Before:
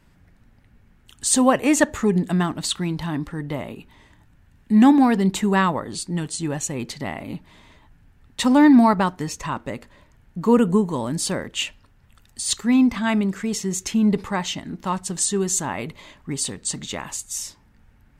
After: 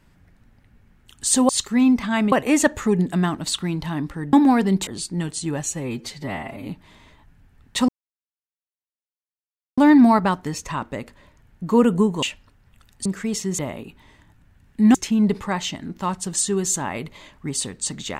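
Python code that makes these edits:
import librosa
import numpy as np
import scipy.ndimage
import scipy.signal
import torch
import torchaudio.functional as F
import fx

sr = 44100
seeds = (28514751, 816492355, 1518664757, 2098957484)

y = fx.edit(x, sr, fx.move(start_s=3.5, length_s=1.36, to_s=13.78),
    fx.cut(start_s=5.4, length_s=0.44),
    fx.stretch_span(start_s=6.63, length_s=0.67, factor=1.5),
    fx.insert_silence(at_s=8.52, length_s=1.89),
    fx.cut(start_s=10.97, length_s=0.62),
    fx.move(start_s=12.42, length_s=0.83, to_s=1.49), tone=tone)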